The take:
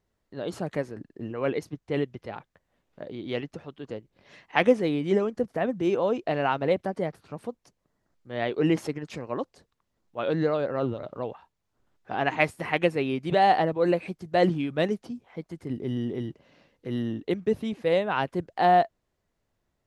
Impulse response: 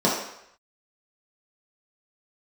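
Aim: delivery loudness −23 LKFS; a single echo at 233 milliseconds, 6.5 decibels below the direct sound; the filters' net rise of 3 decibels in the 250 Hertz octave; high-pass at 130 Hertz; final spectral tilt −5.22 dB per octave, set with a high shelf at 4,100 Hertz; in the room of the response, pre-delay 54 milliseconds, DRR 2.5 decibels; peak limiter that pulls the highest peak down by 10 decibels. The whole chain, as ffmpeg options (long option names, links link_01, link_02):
-filter_complex "[0:a]highpass=130,equalizer=frequency=250:width_type=o:gain=4.5,highshelf=frequency=4100:gain=-4,alimiter=limit=-15dB:level=0:latency=1,aecho=1:1:233:0.473,asplit=2[link_01][link_02];[1:a]atrim=start_sample=2205,adelay=54[link_03];[link_02][link_03]afir=irnorm=-1:irlink=0,volume=-20dB[link_04];[link_01][link_04]amix=inputs=2:normalize=0,volume=0.5dB"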